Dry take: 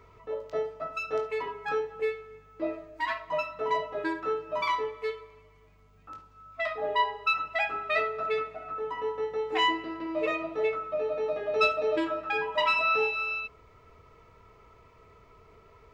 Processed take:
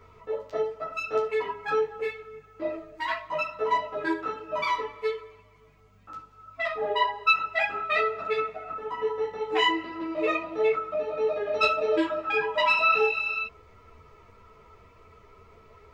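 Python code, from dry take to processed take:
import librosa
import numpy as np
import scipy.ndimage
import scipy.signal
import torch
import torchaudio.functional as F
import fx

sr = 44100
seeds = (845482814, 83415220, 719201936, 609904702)

y = fx.ensemble(x, sr)
y = y * 10.0 ** (5.5 / 20.0)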